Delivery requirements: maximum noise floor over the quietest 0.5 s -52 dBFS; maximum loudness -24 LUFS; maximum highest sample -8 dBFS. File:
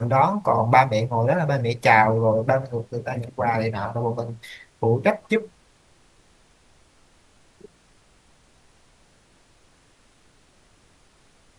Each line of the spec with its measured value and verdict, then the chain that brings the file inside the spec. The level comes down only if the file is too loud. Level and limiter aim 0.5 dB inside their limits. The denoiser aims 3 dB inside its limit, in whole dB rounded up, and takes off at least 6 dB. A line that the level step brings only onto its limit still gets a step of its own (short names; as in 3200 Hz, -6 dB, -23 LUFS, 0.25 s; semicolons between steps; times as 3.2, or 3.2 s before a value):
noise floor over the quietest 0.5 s -58 dBFS: OK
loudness -21.5 LUFS: fail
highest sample -3.0 dBFS: fail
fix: gain -3 dB; limiter -8.5 dBFS